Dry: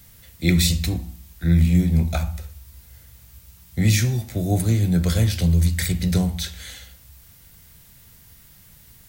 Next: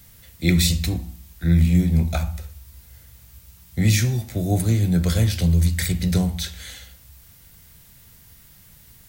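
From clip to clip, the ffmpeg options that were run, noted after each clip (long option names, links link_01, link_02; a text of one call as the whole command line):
ffmpeg -i in.wav -af anull out.wav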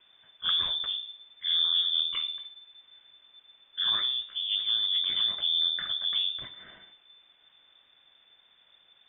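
ffmpeg -i in.wav -af "aeval=exprs='(tanh(5.62*val(0)+0.6)-tanh(0.6))/5.62':channel_layout=same,acrusher=bits=8:mix=0:aa=0.000001,lowpass=frequency=3100:width_type=q:width=0.5098,lowpass=frequency=3100:width_type=q:width=0.6013,lowpass=frequency=3100:width_type=q:width=0.9,lowpass=frequency=3100:width_type=q:width=2.563,afreqshift=-3600,volume=-6dB" out.wav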